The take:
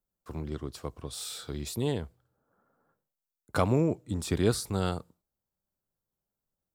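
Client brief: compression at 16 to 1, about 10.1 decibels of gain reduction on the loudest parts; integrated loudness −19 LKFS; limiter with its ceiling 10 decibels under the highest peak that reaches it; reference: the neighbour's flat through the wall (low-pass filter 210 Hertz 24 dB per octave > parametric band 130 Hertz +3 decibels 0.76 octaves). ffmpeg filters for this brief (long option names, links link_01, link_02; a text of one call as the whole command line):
ffmpeg -i in.wav -af "acompressor=threshold=-29dB:ratio=16,alimiter=level_in=3.5dB:limit=-24dB:level=0:latency=1,volume=-3.5dB,lowpass=frequency=210:width=0.5412,lowpass=frequency=210:width=1.3066,equalizer=frequency=130:width_type=o:width=0.76:gain=3,volume=24dB" out.wav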